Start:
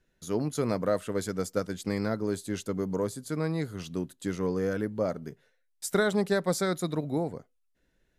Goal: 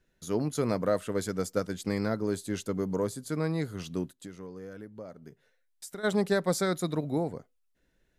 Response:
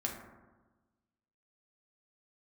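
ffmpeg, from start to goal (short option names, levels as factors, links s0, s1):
-filter_complex "[0:a]asplit=3[s0][s1][s2];[s0]afade=t=out:st=4.1:d=0.02[s3];[s1]acompressor=threshold=0.00562:ratio=3,afade=t=in:st=4.1:d=0.02,afade=t=out:st=6.03:d=0.02[s4];[s2]afade=t=in:st=6.03:d=0.02[s5];[s3][s4][s5]amix=inputs=3:normalize=0"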